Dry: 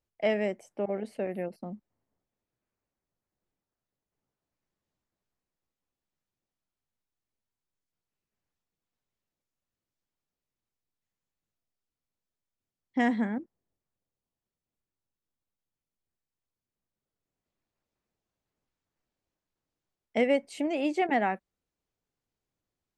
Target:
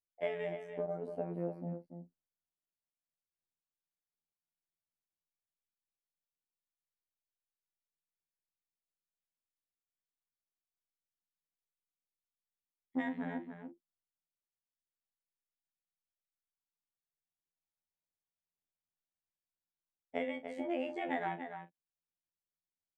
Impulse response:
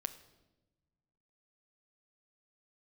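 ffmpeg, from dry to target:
-filter_complex "[0:a]afwtdn=0.00891,acompressor=threshold=0.0355:ratio=6,afftfilt=real='hypot(re,im)*cos(PI*b)':imag='0':win_size=2048:overlap=0.75,asplit=2[s0][s1];[s1]adelay=41,volume=0.224[s2];[s0][s2]amix=inputs=2:normalize=0,asplit=2[s3][s4];[s4]adelay=291.5,volume=0.398,highshelf=f=4000:g=-6.56[s5];[s3][s5]amix=inputs=2:normalize=0"

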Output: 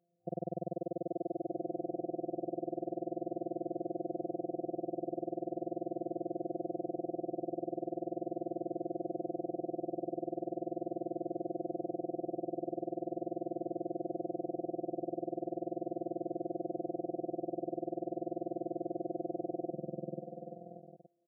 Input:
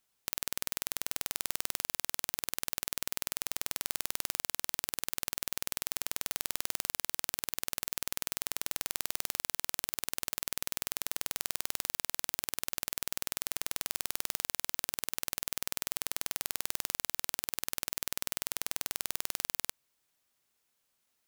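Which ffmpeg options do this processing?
-af "afftfilt=real='hypot(re,im)*cos(PI*b)':imag='0':win_size=1024:overlap=0.75,aecho=1:1:490|833|1073|1241|1359:0.631|0.398|0.251|0.158|0.1,afftfilt=real='re*between(b*sr/4096,110,750)':imag='im*between(b*sr/4096,110,750)':win_size=4096:overlap=0.75,volume=6.31"

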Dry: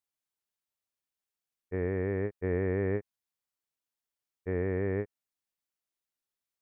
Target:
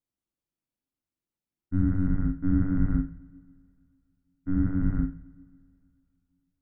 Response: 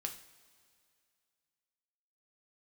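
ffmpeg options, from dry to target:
-filter_complex "[0:a]tiltshelf=f=900:g=8.5,afreqshift=-370,bandreject=f=1800:w=27,asplit=2[s0][s1];[1:a]atrim=start_sample=2205,adelay=42[s2];[s1][s2]afir=irnorm=-1:irlink=0,volume=0.708[s3];[s0][s3]amix=inputs=2:normalize=0"

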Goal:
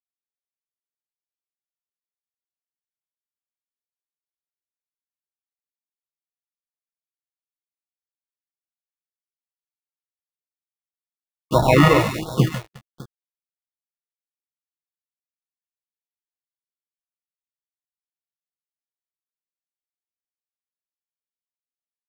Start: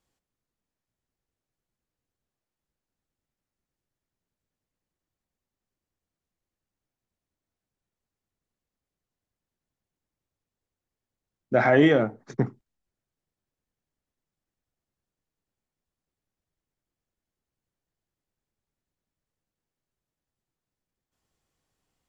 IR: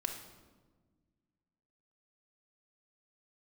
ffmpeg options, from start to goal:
-filter_complex "[0:a]lowpass=3300,equalizer=f=120:t=o:w=2.1:g=7.5,asplit=2[s0][s1];[s1]asetrate=52444,aresample=44100,atempo=0.840896,volume=0.355[s2];[s0][s2]amix=inputs=2:normalize=0,aecho=1:1:6.1:0.4,acrusher=samples=28:mix=1:aa=0.000001,equalizer=f=2600:t=o:w=1.5:g=4,asplit=2[s3][s4];[s4]aecho=0:1:146|359|604:0.335|0.106|0.141[s5];[s3][s5]amix=inputs=2:normalize=0,aeval=exprs='sgn(val(0))*max(abs(val(0))-0.015,0)':c=same,acrossover=split=2600[s6][s7];[s7]acompressor=threshold=0.0316:ratio=4:attack=1:release=60[s8];[s6][s8]amix=inputs=2:normalize=0,afftfilt=real='re*(1-between(b*sr/1024,200*pow(2400/200,0.5+0.5*sin(2*PI*1.4*pts/sr))/1.41,200*pow(2400/200,0.5+0.5*sin(2*PI*1.4*pts/sr))*1.41))':imag='im*(1-between(b*sr/1024,200*pow(2400/200,0.5+0.5*sin(2*PI*1.4*pts/sr))/1.41,200*pow(2400/200,0.5+0.5*sin(2*PI*1.4*pts/sr))*1.41))':win_size=1024:overlap=0.75,volume=1.26"

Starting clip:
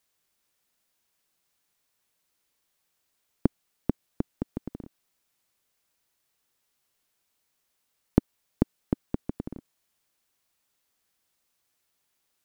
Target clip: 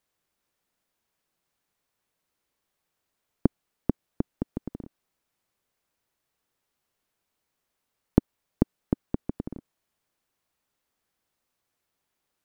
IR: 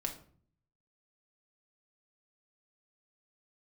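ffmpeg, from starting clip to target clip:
-af "highshelf=f=2200:g=-8.5,volume=1.19"

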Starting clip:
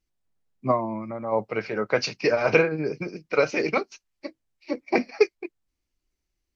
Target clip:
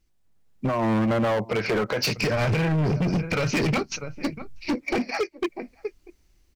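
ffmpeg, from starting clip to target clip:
-filter_complex "[0:a]lowshelf=f=230:g=5,asplit=2[s0][s1];[s1]adelay=641.4,volume=0.0355,highshelf=f=4000:g=-14.4[s2];[s0][s2]amix=inputs=2:normalize=0,acompressor=threshold=0.0501:ratio=5,asplit=3[s3][s4][s5];[s3]afade=t=out:st=2.16:d=0.02[s6];[s4]asubboost=boost=11:cutoff=140,afade=t=in:st=2.16:d=0.02,afade=t=out:st=4.74:d=0.02[s7];[s5]afade=t=in:st=4.74:d=0.02[s8];[s6][s7][s8]amix=inputs=3:normalize=0,alimiter=limit=0.0668:level=0:latency=1:release=160,dynaudnorm=f=150:g=9:m=2.51,asoftclip=type=hard:threshold=0.0422,volume=2.24"

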